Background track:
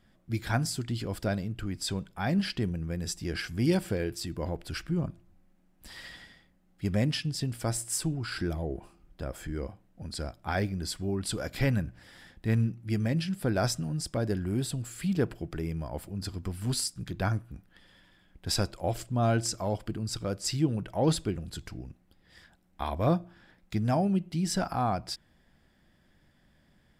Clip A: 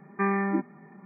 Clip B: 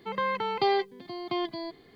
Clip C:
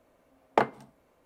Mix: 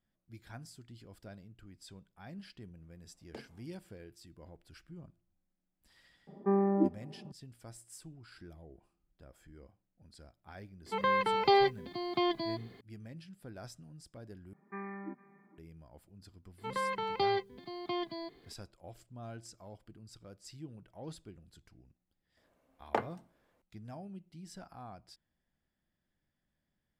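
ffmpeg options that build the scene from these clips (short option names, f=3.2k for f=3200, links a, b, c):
-filter_complex "[3:a]asplit=2[a][b];[1:a]asplit=2[c][d];[2:a]asplit=2[e][f];[0:a]volume=-20dB[g];[a]acrossover=split=450|3000[h][i][j];[i]acompressor=threshold=-44dB:ratio=6:attack=3.2:release=140:knee=2.83:detection=peak[k];[h][k][j]amix=inputs=3:normalize=0[l];[c]lowpass=f=590:t=q:w=2.3[m];[d]aecho=1:1:457:0.0944[n];[g]asplit=2[o][p];[o]atrim=end=14.534[q];[n]atrim=end=1.05,asetpts=PTS-STARTPTS,volume=-17dB[r];[p]atrim=start=15.576[s];[l]atrim=end=1.25,asetpts=PTS-STARTPTS,volume=-16.5dB,afade=t=in:d=0.004:c=hsin,afade=t=out:st=1.246:d=0.004:c=hsin,adelay=2770[t];[m]atrim=end=1.05,asetpts=PTS-STARTPTS,volume=-3dB,afade=t=in:d=0.004:c=hsin,afade=t=out:st=1.046:d=0.004:c=hsin,adelay=6270[u];[e]atrim=end=1.95,asetpts=PTS-STARTPTS,afade=t=in:d=0.004:c=hsin,afade=t=out:st=1.946:d=0.004:c=hsin,adelay=10860[v];[f]atrim=end=1.95,asetpts=PTS-STARTPTS,volume=-5.5dB,afade=t=in:d=0.004:c=hsin,afade=t=out:st=1.946:d=0.004:c=hsin,adelay=16580[w];[b]atrim=end=1.25,asetpts=PTS-STARTPTS,volume=-8.5dB,afade=t=in:d=0.004:c=hsin,afade=t=out:st=1.246:d=0.004:c=hsin,adelay=22370[x];[q][r]acrossfade=d=0.004:c1=hsin:c2=hsin[y];[y][s]acrossfade=d=0.004:c1=hsin:c2=hsin[z];[z][t][u][v][w][x]amix=inputs=6:normalize=0"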